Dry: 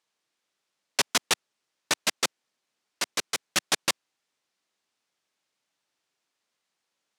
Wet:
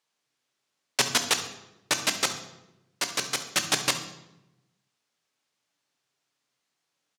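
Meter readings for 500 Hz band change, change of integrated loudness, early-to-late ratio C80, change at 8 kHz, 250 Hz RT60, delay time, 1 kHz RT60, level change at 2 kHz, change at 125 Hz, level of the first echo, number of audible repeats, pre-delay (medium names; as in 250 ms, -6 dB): +1.0 dB, +1.0 dB, 12.0 dB, +1.5 dB, 1.2 s, 68 ms, 0.85 s, +1.0 dB, +6.0 dB, -15.5 dB, 1, 3 ms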